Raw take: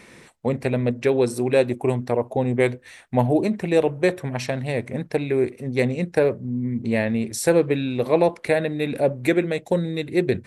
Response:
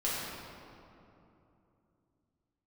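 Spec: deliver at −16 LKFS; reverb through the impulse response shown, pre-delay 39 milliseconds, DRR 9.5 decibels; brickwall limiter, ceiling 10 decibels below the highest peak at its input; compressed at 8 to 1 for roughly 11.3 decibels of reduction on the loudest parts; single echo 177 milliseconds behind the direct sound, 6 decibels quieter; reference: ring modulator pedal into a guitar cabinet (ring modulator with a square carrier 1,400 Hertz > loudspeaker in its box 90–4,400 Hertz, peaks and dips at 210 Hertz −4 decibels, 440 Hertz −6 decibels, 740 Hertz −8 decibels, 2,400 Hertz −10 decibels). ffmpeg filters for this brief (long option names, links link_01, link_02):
-filter_complex "[0:a]acompressor=threshold=-25dB:ratio=8,alimiter=limit=-22dB:level=0:latency=1,aecho=1:1:177:0.501,asplit=2[link_01][link_02];[1:a]atrim=start_sample=2205,adelay=39[link_03];[link_02][link_03]afir=irnorm=-1:irlink=0,volume=-17dB[link_04];[link_01][link_04]amix=inputs=2:normalize=0,aeval=exprs='val(0)*sgn(sin(2*PI*1400*n/s))':channel_layout=same,highpass=90,equalizer=frequency=210:width_type=q:width=4:gain=-4,equalizer=frequency=440:width_type=q:width=4:gain=-6,equalizer=frequency=740:width_type=q:width=4:gain=-8,equalizer=frequency=2400:width_type=q:width=4:gain=-10,lowpass=frequency=4400:width=0.5412,lowpass=frequency=4400:width=1.3066,volume=15.5dB"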